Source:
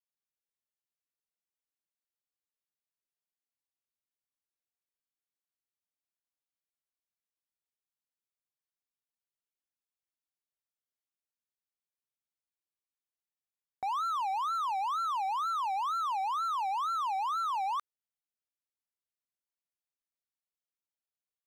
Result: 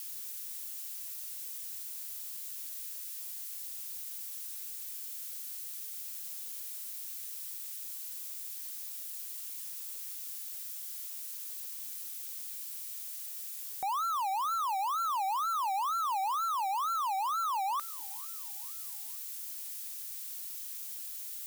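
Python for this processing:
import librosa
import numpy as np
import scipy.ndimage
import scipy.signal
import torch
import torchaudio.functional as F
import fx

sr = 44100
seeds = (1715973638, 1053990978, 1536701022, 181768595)

p1 = x + 0.5 * 10.0 ** (-34.0 / 20.0) * np.diff(np.sign(x), prepend=np.sign(x[:1]))
p2 = fx.low_shelf_res(p1, sr, hz=180.0, db=-10.5, q=1.5, at=(14.98, 16.37))
y = p2 + fx.echo_feedback(p2, sr, ms=457, feedback_pct=49, wet_db=-22.0, dry=0)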